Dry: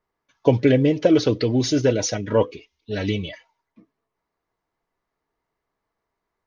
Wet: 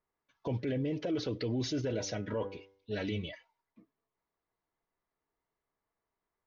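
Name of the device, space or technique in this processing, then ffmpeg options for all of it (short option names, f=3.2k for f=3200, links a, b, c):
stacked limiters: -filter_complex "[0:a]asettb=1/sr,asplit=3[a][b][c];[a]atrim=end=1.824[d];[b]atrim=start=1.82:end=3.24,asetpts=PTS-STARTPTS,afade=t=in:d=0.004:c=qsin,afade=t=out:st=1.416:d=0.004:c=qsin,bandreject=f=97.72:t=h:w=4,bandreject=f=195.44:t=h:w=4,bandreject=f=293.16:t=h:w=4,bandreject=f=390.88:t=h:w=4,bandreject=f=488.6:t=h:w=4,bandreject=f=586.32:t=h:w=4,bandreject=f=684.04:t=h:w=4,bandreject=f=781.76:t=h:w=4,bandreject=f=879.48:t=h:w=4,bandreject=f=977.2:t=h:w=4,bandreject=f=1.07492k:t=h:w=4,bandreject=f=1.17264k:t=h:w=4,bandreject=f=1.27036k:t=h:w=4,bandreject=f=1.36808k:t=h:w=4,bandreject=f=1.4658k:t=h:w=4,bandreject=f=1.56352k:t=h:w=4,bandreject=f=1.66124k:t=h:w=4,bandreject=f=1.75896k:t=h:w=4,bandreject=f=1.85668k:t=h:w=4,bandreject=f=1.9544k:t=h:w=4,bandreject=f=2.05212k:t=h:w=4,bandreject=f=2.14984k:t=h:w=4[e];[c]atrim=start=3.236[f];[d][e]acrossfade=d=0.004:c1=hsin:c2=qsin[g];[g][f]acrossfade=d=0.004:c1=qsin:c2=hsin,alimiter=limit=-7.5dB:level=0:latency=1:release=256,alimiter=limit=-11.5dB:level=0:latency=1:release=69,alimiter=limit=-17.5dB:level=0:latency=1:release=16,lowpass=5.1k,volume=-8.5dB"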